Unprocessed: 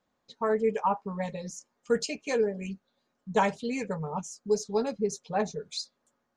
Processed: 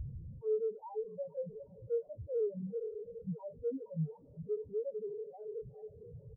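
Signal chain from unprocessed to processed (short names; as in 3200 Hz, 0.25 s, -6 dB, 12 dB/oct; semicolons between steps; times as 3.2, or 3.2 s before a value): high shelf 2600 Hz -10.5 dB; added noise pink -45 dBFS; HPF 67 Hz 6 dB/oct; doubler 19 ms -13 dB; in parallel at 0 dB: limiter -23.5 dBFS, peak gain reduction 9.5 dB; on the sum: ten-band EQ 125 Hz +9 dB, 250 Hz -6 dB, 500 Hz +12 dB, 1000 Hz +6 dB, 2000 Hz -9 dB; on a send: diffused feedback echo 0.468 s, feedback 45%, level -13 dB; on the sum: Schmitt trigger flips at -31.5 dBFS; reverb removal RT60 1.7 s; soft clip -27.5 dBFS, distortion -13 dB; spectral expander 4:1; gain +1.5 dB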